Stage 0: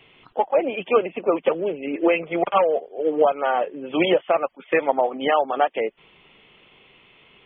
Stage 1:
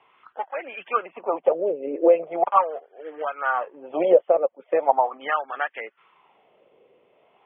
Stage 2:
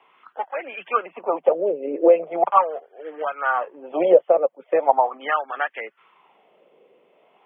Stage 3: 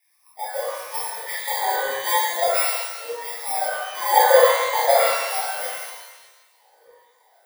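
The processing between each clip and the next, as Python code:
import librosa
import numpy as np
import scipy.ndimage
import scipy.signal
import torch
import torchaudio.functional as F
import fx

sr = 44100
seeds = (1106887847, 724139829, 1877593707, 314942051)

y1 = fx.low_shelf(x, sr, hz=180.0, db=4.5)
y1 = fx.wah_lfo(y1, sr, hz=0.4, low_hz=500.0, high_hz=1700.0, q=3.6)
y1 = y1 * 10.0 ** (6.0 / 20.0)
y2 = scipy.signal.sosfilt(scipy.signal.butter(12, 150.0, 'highpass', fs=sr, output='sos'), y1)
y2 = y2 * 10.0 ** (2.0 / 20.0)
y3 = fx.bit_reversed(y2, sr, seeds[0], block=32)
y3 = fx.filter_lfo_highpass(y3, sr, shape='saw_down', hz=1.6, low_hz=480.0, high_hz=1800.0, q=6.5)
y3 = fx.rev_shimmer(y3, sr, seeds[1], rt60_s=1.2, semitones=12, shimmer_db=-8, drr_db=-8.0)
y3 = y3 * 10.0 ** (-14.0 / 20.0)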